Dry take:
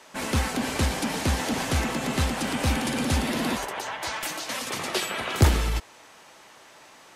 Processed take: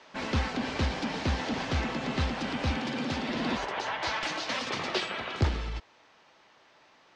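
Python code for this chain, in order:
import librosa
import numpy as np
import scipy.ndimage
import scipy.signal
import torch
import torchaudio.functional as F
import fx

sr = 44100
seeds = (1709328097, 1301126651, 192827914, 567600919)

y = scipy.signal.sosfilt(scipy.signal.butter(4, 5200.0, 'lowpass', fs=sr, output='sos'), x)
y = fx.rider(y, sr, range_db=10, speed_s=0.5)
y = fx.highpass(y, sr, hz=fx.line((2.71, 77.0), (3.27, 170.0)), slope=12, at=(2.71, 3.27), fade=0.02)
y = y * 10.0 ** (-4.0 / 20.0)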